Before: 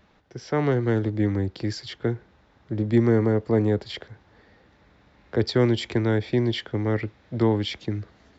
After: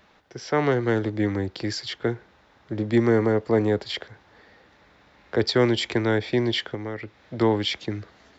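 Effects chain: low shelf 310 Hz -10 dB; 6.74–7.39 compressor 4:1, threshold -35 dBFS, peak gain reduction 10 dB; gain +5 dB

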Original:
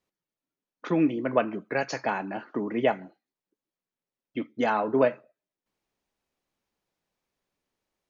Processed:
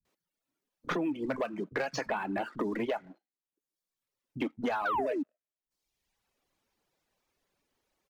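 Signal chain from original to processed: vibrato 1 Hz 15 cents; painted sound fall, 4.8–5.18, 260–1600 Hz -23 dBFS; compressor 10:1, threshold -31 dBFS, peak gain reduction 15.5 dB; sample leveller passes 2; reverb removal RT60 0.94 s; bands offset in time lows, highs 50 ms, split 170 Hz; three-band squash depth 40%; gain -1.5 dB

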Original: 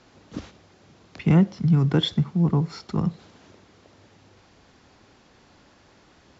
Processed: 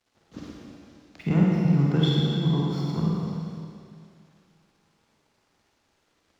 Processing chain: crossover distortion -52.5 dBFS; delay with a stepping band-pass 0.128 s, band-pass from 280 Hz, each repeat 1.4 oct, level -4.5 dB; Schroeder reverb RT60 2.2 s, DRR -4 dB; gain -6.5 dB

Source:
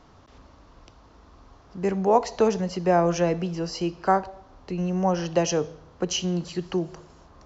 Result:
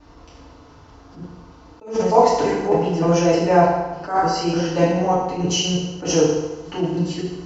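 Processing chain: slices in reverse order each 0.302 s, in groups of 3; FDN reverb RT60 1.1 s, low-frequency decay 0.9×, high-frequency decay 0.85×, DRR -8.5 dB; attack slew limiter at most 150 dB/s; gain -2 dB

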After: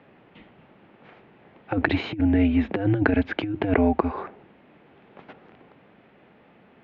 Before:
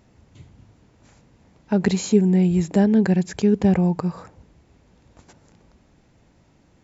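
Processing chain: mistuned SSB -100 Hz 300–3200 Hz; negative-ratio compressor -26 dBFS, ratio -0.5; gain +6 dB

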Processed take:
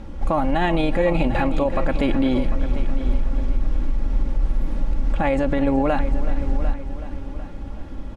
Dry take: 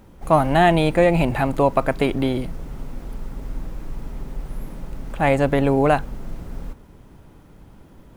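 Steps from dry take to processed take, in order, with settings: LPF 5800 Hz 12 dB/oct; low shelf 100 Hz +8 dB; comb 3.6 ms, depth 54%; in parallel at +2 dB: compressor, threshold -29 dBFS, peak gain reduction 19 dB; on the sum: limiter -11.5 dBFS, peak gain reduction 11 dB; on a send: multi-head echo 0.374 s, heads first and second, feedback 45%, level -14.5 dB

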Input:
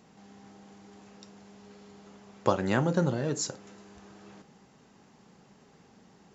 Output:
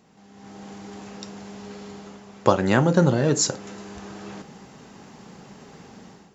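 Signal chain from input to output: AGC gain up to 13 dB

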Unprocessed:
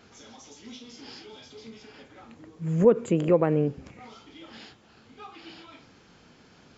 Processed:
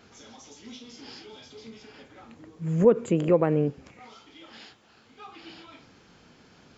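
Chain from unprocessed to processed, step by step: 3.7–5.27 low shelf 360 Hz -7 dB

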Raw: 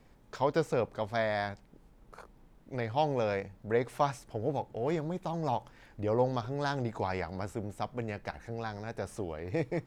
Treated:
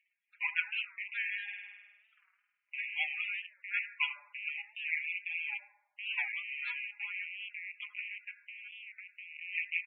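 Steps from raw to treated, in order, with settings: rattling part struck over -43 dBFS, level -26 dBFS; power-law curve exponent 2; comb 4.9 ms, depth 80%; upward compressor, threshold -57 dBFS; resonant high-pass 2300 Hz, resonance Q 4; 8.34–9.36 compressor, threshold -46 dBFS, peak gain reduction 6.5 dB; high shelf 5300 Hz -10 dB; reverb RT60 0.90 s, pre-delay 4 ms, DRR 5.5 dB; loudest bins only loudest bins 32; 1.43–2.81 flutter echo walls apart 8.7 m, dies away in 1.2 s; record warp 45 rpm, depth 160 cents; gain +3 dB

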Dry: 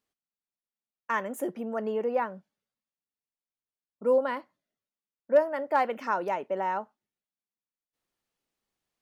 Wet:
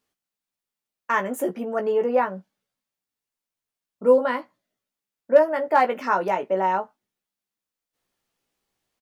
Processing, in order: doubler 16 ms -5 dB; gain +5.5 dB

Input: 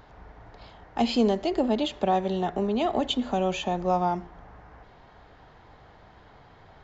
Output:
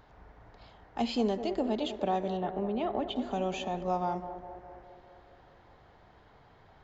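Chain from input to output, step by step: 2.37–3.16 LPF 2700 Hz 12 dB/oct; narrowing echo 0.204 s, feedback 69%, band-pass 490 Hz, level -9 dB; gain -6.5 dB

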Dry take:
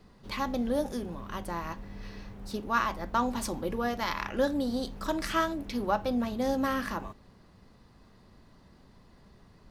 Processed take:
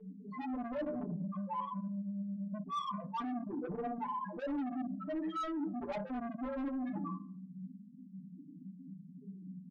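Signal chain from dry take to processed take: steep high-pass 170 Hz 96 dB/oct; loudest bins only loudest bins 1; elliptic low-pass 3500 Hz; tilt -3 dB/oct; notches 60/120/180/240/300/360/420/480/540/600 Hz; early reflections 35 ms -17.5 dB, 55 ms -13.5 dB; on a send at -10 dB: reverb RT60 0.45 s, pre-delay 5 ms; on the sum: soft clip -37.5 dBFS, distortion -7 dB; comb 6.8 ms, depth 85%; reverse; compressor 6:1, threshold -50 dBFS, peak gain reduction 14.5 dB; reverse; gain +13.5 dB

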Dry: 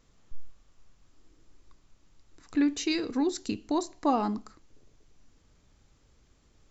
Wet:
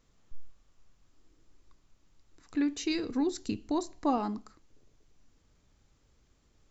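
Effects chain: 2.84–4.18 low shelf 190 Hz +7.5 dB; gain -4 dB

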